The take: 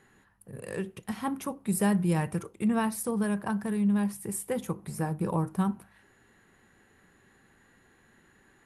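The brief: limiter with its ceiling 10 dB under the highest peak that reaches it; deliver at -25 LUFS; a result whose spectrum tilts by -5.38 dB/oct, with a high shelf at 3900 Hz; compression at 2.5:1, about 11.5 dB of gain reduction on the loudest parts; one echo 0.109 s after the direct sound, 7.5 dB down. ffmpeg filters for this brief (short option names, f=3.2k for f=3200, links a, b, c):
-af "highshelf=f=3.9k:g=-6.5,acompressor=threshold=-40dB:ratio=2.5,alimiter=level_in=11.5dB:limit=-24dB:level=0:latency=1,volume=-11.5dB,aecho=1:1:109:0.422,volume=18.5dB"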